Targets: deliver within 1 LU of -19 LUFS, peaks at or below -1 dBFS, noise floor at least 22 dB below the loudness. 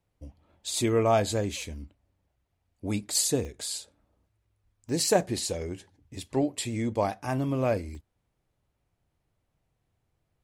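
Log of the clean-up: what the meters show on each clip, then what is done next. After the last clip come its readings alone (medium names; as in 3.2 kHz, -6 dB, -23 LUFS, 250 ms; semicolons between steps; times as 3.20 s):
dropouts 4; longest dropout 1.5 ms; loudness -28.5 LUFS; peak level -9.5 dBFS; loudness target -19.0 LUFS
-> interpolate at 1.62/3.45/4.89/7.95 s, 1.5 ms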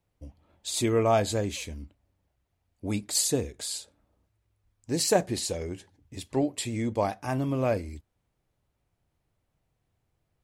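dropouts 0; loudness -28.5 LUFS; peak level -9.5 dBFS; loudness target -19.0 LUFS
-> trim +9.5 dB; peak limiter -1 dBFS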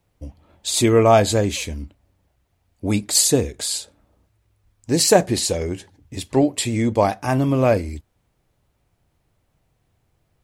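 loudness -19.0 LUFS; peak level -1.0 dBFS; noise floor -69 dBFS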